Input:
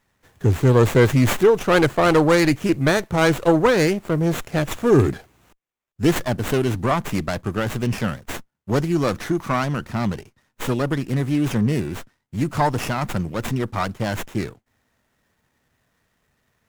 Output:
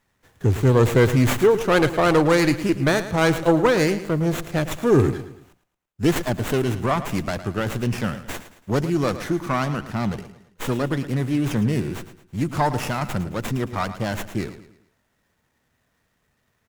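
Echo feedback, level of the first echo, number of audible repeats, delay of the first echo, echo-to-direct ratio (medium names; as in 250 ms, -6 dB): 40%, -13.0 dB, 3, 110 ms, -12.0 dB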